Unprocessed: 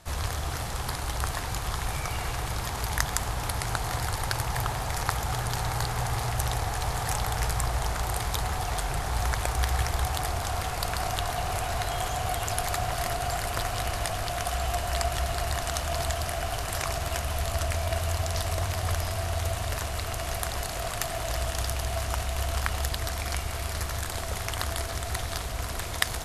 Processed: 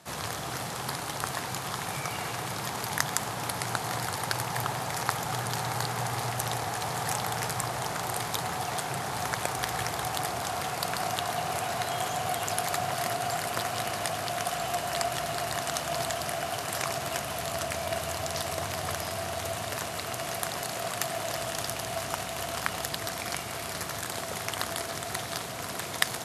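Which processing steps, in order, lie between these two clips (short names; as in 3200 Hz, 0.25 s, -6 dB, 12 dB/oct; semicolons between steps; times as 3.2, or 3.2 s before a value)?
HPF 140 Hz 24 dB/oct; low shelf 220 Hz +3.5 dB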